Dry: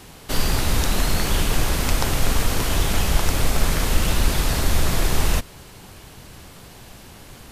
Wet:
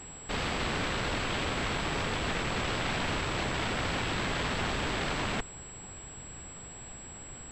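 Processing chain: wrapped overs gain 18.5 dB; pulse-width modulation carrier 7700 Hz; gain -5 dB

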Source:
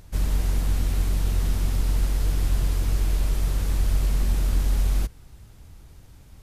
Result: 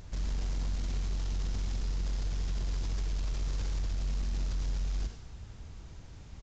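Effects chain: dynamic EQ 5100 Hz, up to +5 dB, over -58 dBFS, Q 1.1; limiter -26 dBFS, peak gain reduction 13.5 dB; soft clip -28 dBFS, distortion -21 dB; non-linear reverb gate 0.12 s rising, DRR 6 dB; downsampling 16000 Hz

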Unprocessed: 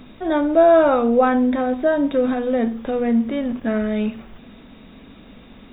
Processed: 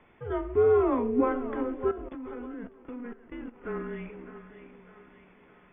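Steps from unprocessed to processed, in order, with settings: mistuned SSB -240 Hz 410–2800 Hz; split-band echo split 520 Hz, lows 0.423 s, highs 0.605 s, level -11 dB; 1.91–3.61 level quantiser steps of 15 dB; gain -8.5 dB

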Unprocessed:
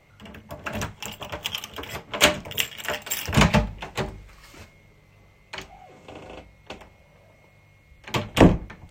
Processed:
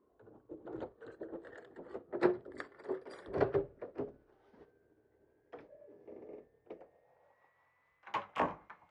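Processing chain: gliding pitch shift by -12 st ending unshifted; band-pass sweep 420 Hz -> 1100 Hz, 6.73–7.44; gain -3.5 dB

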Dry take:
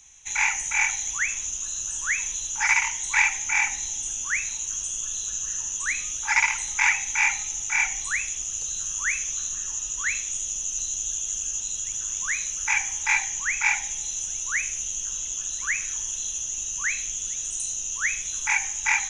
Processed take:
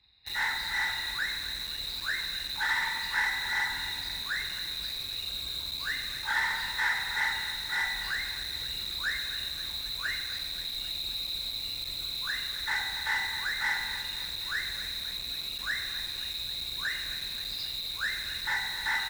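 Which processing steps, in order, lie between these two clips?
nonlinear frequency compression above 1400 Hz 1.5:1; resonator 180 Hz, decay 1.6 s, mix 60%; dynamic EQ 1500 Hz, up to +7 dB, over -48 dBFS, Q 3.3; HPF 41 Hz 12 dB/oct; low shelf 440 Hz +8 dB; de-hum 283.5 Hz, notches 30; on a send: feedback echo 0.264 s, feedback 56%, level -15.5 dB; on the sum: spring tank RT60 1.6 s, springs 47 ms, chirp 75 ms, DRR 8.5 dB; in parallel at -7 dB: companded quantiser 2-bit; on the sum: gain -4.5 dB

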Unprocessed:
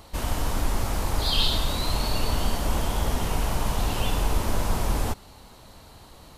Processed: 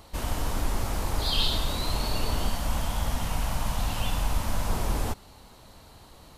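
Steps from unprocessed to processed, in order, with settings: 2.49–4.67 bell 390 Hz -13.5 dB 0.51 oct; gain -2.5 dB

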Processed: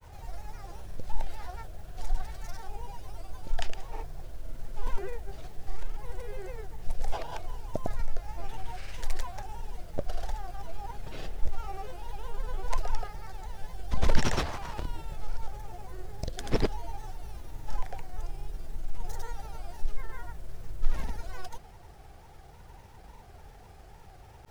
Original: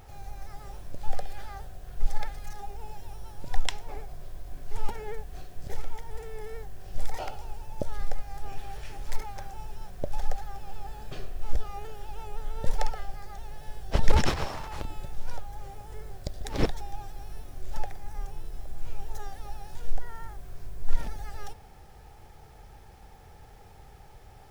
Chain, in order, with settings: in parallel at -5.5 dB: hard clip -22.5 dBFS, distortion -5 dB; on the sum: grains, grains 20/s, pitch spread up and down by 3 st; gain -2.5 dB

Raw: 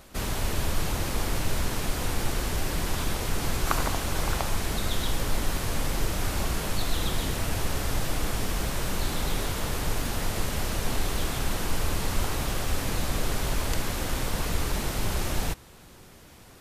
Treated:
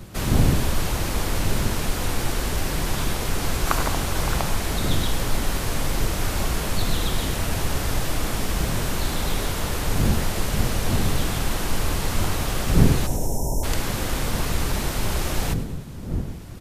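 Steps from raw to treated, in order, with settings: wind noise 150 Hz -32 dBFS; spectral delete 13.07–13.64, 1000–5200 Hz; feedback echo 0.101 s, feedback 52%, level -14.5 dB; gain +3.5 dB

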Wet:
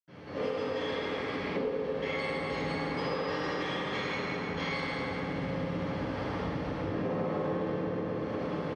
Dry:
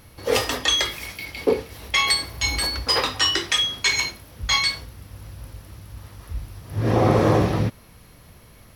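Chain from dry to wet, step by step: per-bin compression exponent 0.6; on a send: echo 1.189 s -23.5 dB; on the sum: AM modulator 220 Hz, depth 35%; AGC gain up to 11 dB; BPF 170–3500 Hz; high shelf 2600 Hz -10.5 dB; reverb RT60 3.0 s, pre-delay 78 ms; in parallel at -4 dB: one-sided clip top -22 dBFS; on the sum: compressor 6:1, threshold -30 dBFS, peak gain reduction 13 dB

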